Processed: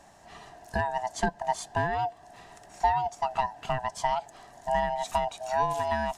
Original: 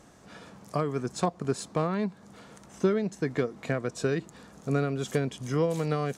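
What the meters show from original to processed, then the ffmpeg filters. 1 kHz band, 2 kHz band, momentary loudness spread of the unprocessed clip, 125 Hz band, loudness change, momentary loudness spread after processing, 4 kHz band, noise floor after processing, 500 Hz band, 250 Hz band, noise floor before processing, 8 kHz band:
+10.5 dB, +4.0 dB, 12 LU, −8.5 dB, +0.5 dB, 12 LU, +2.0 dB, −54 dBFS, −2.5 dB, −10.5 dB, −54 dBFS, 0.0 dB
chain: -af "afftfilt=real='real(if(lt(b,1008),b+24*(1-2*mod(floor(b/24),2)),b),0)':imag='imag(if(lt(b,1008),b+24*(1-2*mod(floor(b/24),2)),b),0)':win_size=2048:overlap=0.75"

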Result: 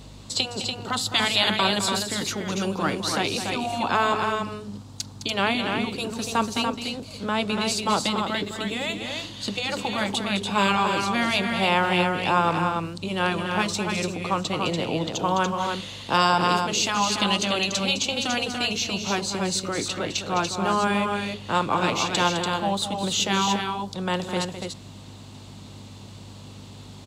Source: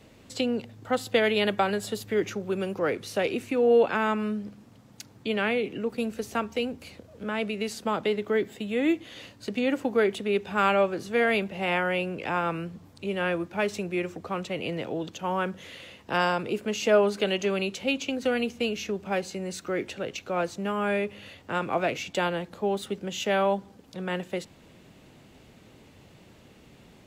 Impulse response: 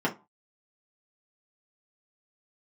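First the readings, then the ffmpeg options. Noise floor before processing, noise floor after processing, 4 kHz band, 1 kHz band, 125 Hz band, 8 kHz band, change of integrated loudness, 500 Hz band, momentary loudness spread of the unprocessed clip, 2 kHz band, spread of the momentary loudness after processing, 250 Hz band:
−54 dBFS, −43 dBFS, +11.0 dB, +7.0 dB, +6.5 dB, +13.0 dB, +3.5 dB, −2.5 dB, 11 LU, +4.0 dB, 12 LU, +2.5 dB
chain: -af "afftfilt=real='re*lt(hypot(re,im),0.316)':imag='im*lt(hypot(re,im),0.316)':win_size=1024:overlap=0.75,aeval=exprs='val(0)+0.00501*(sin(2*PI*50*n/s)+sin(2*PI*2*50*n/s)/2+sin(2*PI*3*50*n/s)/3+sin(2*PI*4*50*n/s)/4+sin(2*PI*5*50*n/s)/5)':channel_layout=same,equalizer=frequency=125:width_type=o:width=1:gain=5,equalizer=frequency=250:width_type=o:width=1:gain=4,equalizer=frequency=1000:width_type=o:width=1:gain=10,equalizer=frequency=2000:width_type=o:width=1:gain=-4,equalizer=frequency=4000:width_type=o:width=1:gain=12,equalizer=frequency=8000:width_type=o:width=1:gain=10,aecho=1:1:209.9|288.6:0.316|0.562"

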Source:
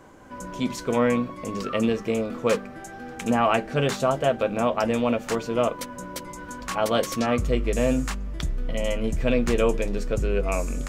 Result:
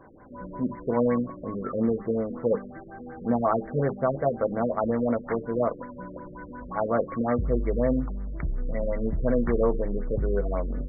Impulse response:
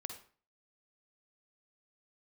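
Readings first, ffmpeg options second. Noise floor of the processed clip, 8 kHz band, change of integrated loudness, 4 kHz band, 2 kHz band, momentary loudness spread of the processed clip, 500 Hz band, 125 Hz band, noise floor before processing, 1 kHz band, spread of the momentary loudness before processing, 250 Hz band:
−44 dBFS, below −40 dB, −2.5 dB, below −40 dB, −10.0 dB, 15 LU, −2.0 dB, −1.5 dB, −40 dBFS, −4.0 dB, 13 LU, −1.5 dB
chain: -af "afftfilt=real='re*lt(b*sr/1024,540*pow(2300/540,0.5+0.5*sin(2*PI*5.5*pts/sr)))':imag='im*lt(b*sr/1024,540*pow(2300/540,0.5+0.5*sin(2*PI*5.5*pts/sr)))':win_size=1024:overlap=0.75,volume=-1.5dB"

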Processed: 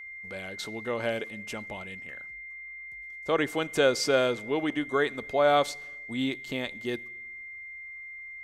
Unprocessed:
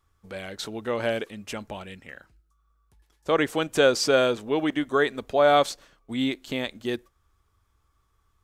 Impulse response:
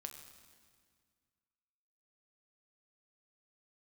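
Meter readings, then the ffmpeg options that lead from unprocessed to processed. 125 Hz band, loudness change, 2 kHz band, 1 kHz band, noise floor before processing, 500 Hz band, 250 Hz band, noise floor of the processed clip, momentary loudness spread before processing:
−3.0 dB, −4.0 dB, −1.0 dB, −3.5 dB, −70 dBFS, −3.5 dB, −4.0 dB, −43 dBFS, 19 LU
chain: -filter_complex "[0:a]aeval=exprs='val(0)+0.0141*sin(2*PI*2100*n/s)':channel_layout=same,asplit=2[link_01][link_02];[1:a]atrim=start_sample=2205,asetrate=79380,aresample=44100[link_03];[link_02][link_03]afir=irnorm=-1:irlink=0,volume=-5dB[link_04];[link_01][link_04]amix=inputs=2:normalize=0,volume=-5dB"

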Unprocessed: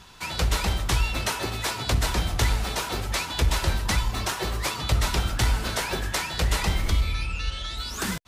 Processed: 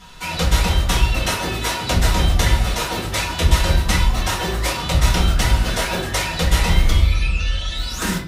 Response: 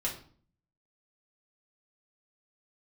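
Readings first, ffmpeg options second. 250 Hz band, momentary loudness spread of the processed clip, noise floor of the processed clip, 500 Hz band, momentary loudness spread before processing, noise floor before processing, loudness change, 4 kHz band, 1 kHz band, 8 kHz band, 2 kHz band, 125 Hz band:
+8.5 dB, 5 LU, −27 dBFS, +7.0 dB, 5 LU, −35 dBFS, +7.0 dB, +6.0 dB, +6.5 dB, +5.5 dB, +6.0 dB, +7.5 dB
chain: -filter_complex "[1:a]atrim=start_sample=2205[link_01];[0:a][link_01]afir=irnorm=-1:irlink=0,volume=2.5dB"

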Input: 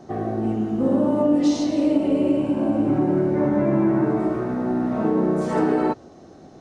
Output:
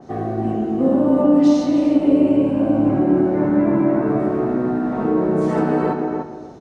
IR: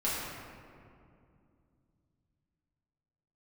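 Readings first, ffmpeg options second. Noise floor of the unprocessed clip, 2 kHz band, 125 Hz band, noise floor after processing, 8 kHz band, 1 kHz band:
−46 dBFS, +2.0 dB, +2.0 dB, −34 dBFS, can't be measured, +3.0 dB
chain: -filter_complex "[0:a]asplit=2[link_01][link_02];[link_02]adelay=297,lowpass=frequency=1700:poles=1,volume=-4dB,asplit=2[link_03][link_04];[link_04]adelay=297,lowpass=frequency=1700:poles=1,volume=0.18,asplit=2[link_05][link_06];[link_06]adelay=297,lowpass=frequency=1700:poles=1,volume=0.18[link_07];[link_01][link_03][link_05][link_07]amix=inputs=4:normalize=0,asplit=2[link_08][link_09];[1:a]atrim=start_sample=2205,afade=type=out:start_time=0.31:duration=0.01,atrim=end_sample=14112,asetrate=48510,aresample=44100[link_10];[link_09][link_10]afir=irnorm=-1:irlink=0,volume=-12dB[link_11];[link_08][link_11]amix=inputs=2:normalize=0,adynamicequalizer=threshold=0.00708:dfrequency=3200:dqfactor=0.7:tfrequency=3200:tqfactor=0.7:attack=5:release=100:ratio=0.375:range=2.5:mode=cutabove:tftype=highshelf"

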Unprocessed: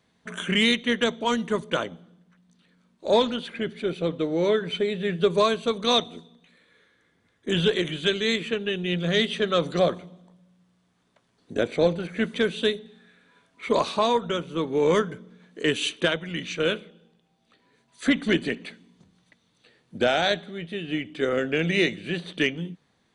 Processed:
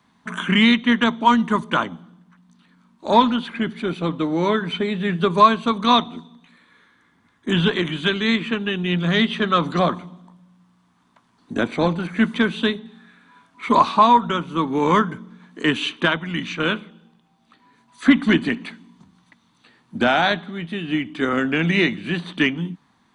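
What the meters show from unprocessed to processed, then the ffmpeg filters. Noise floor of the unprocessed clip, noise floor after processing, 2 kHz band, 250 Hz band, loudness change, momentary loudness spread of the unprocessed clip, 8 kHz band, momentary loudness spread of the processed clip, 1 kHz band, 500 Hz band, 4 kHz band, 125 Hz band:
−68 dBFS, −62 dBFS, +5.5 dB, +7.5 dB, +5.0 dB, 12 LU, can't be measured, 13 LU, +11.5 dB, −0.5 dB, +2.0 dB, +6.0 dB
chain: -filter_complex "[0:a]acrossover=split=120|4500[link_01][link_02][link_03];[link_03]acompressor=threshold=-50dB:ratio=6[link_04];[link_01][link_02][link_04]amix=inputs=3:normalize=0,equalizer=frequency=250:width_type=o:width=1:gain=8,equalizer=frequency=500:width_type=o:width=1:gain=-10,equalizer=frequency=1000:width_type=o:width=1:gain=12,volume=3dB"

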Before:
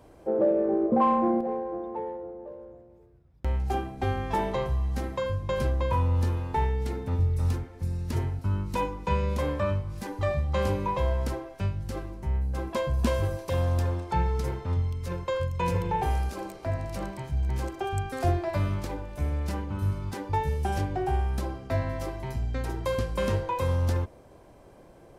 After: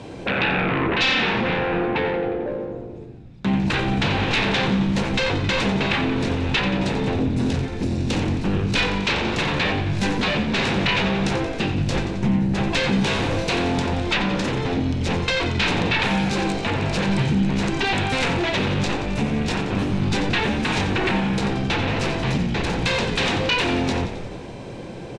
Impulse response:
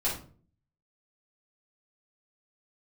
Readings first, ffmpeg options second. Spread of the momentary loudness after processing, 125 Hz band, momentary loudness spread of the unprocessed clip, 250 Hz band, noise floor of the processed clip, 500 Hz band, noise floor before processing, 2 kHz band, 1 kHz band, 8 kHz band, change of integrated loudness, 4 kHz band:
4 LU, +3.5 dB, 8 LU, +11.0 dB, −35 dBFS, +4.5 dB, −53 dBFS, +17.5 dB, +4.5 dB, +11.5 dB, +7.5 dB, +20.5 dB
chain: -filter_complex "[0:a]acompressor=threshold=-28dB:ratio=3,aeval=exprs='0.106*sin(PI/2*4.47*val(0)/0.106)':channel_layout=same,highpass=110,equalizer=frequency=120:width_type=q:width=4:gain=6,equalizer=frequency=190:width_type=q:width=4:gain=6,equalizer=frequency=640:width_type=q:width=4:gain=-7,equalizer=frequency=1200:width_type=q:width=4:gain=-7,equalizer=frequency=2600:width_type=q:width=4:gain=7,equalizer=frequency=3800:width_type=q:width=4:gain=7,lowpass=frequency=7700:width=0.5412,lowpass=frequency=7700:width=1.3066,asplit=9[link_01][link_02][link_03][link_04][link_05][link_06][link_07][link_08][link_09];[link_02]adelay=89,afreqshift=-50,volume=-10dB[link_10];[link_03]adelay=178,afreqshift=-100,volume=-13.9dB[link_11];[link_04]adelay=267,afreqshift=-150,volume=-17.8dB[link_12];[link_05]adelay=356,afreqshift=-200,volume=-21.6dB[link_13];[link_06]adelay=445,afreqshift=-250,volume=-25.5dB[link_14];[link_07]adelay=534,afreqshift=-300,volume=-29.4dB[link_15];[link_08]adelay=623,afreqshift=-350,volume=-33.3dB[link_16];[link_09]adelay=712,afreqshift=-400,volume=-37.1dB[link_17];[link_01][link_10][link_11][link_12][link_13][link_14][link_15][link_16][link_17]amix=inputs=9:normalize=0,asplit=2[link_18][link_19];[1:a]atrim=start_sample=2205[link_20];[link_19][link_20]afir=irnorm=-1:irlink=0,volume=-19dB[link_21];[link_18][link_21]amix=inputs=2:normalize=0"

